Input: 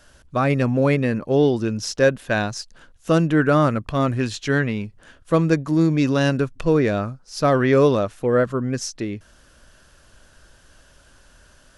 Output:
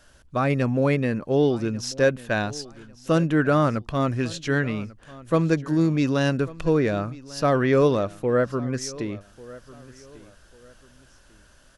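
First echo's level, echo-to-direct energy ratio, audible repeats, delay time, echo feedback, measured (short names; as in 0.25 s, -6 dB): -20.0 dB, -19.5 dB, 2, 1.144 s, 31%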